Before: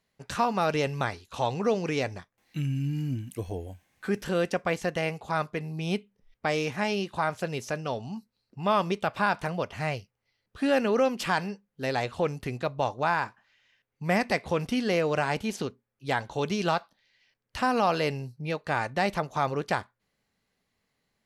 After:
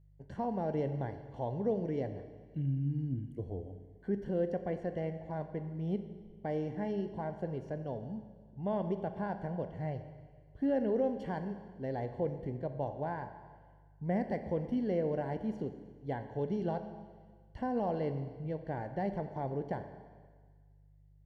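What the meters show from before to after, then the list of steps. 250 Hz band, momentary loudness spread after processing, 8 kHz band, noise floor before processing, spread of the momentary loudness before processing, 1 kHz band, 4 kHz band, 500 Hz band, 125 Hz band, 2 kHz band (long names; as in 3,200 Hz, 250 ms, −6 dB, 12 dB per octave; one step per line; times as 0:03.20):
−4.5 dB, 11 LU, below −30 dB, −81 dBFS, 10 LU, −12.5 dB, below −20 dB, −6.5 dB, −4.0 dB, −19.5 dB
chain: moving average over 35 samples
four-comb reverb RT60 1.6 s, combs from 29 ms, DRR 8.5 dB
hum with harmonics 50 Hz, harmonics 3, −57 dBFS
level −4.5 dB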